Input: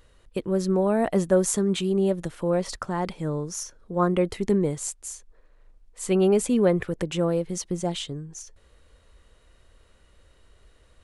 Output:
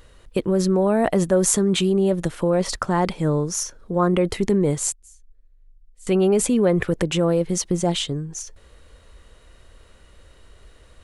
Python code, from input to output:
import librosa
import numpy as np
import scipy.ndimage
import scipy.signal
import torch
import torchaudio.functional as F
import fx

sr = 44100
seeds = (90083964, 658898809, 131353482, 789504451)

p1 = fx.tone_stack(x, sr, knobs='10-0-1', at=(4.92, 6.07))
p2 = fx.over_compress(p1, sr, threshold_db=-26.0, ratio=-1.0)
y = p1 + (p2 * 10.0 ** (-0.5 / 20.0))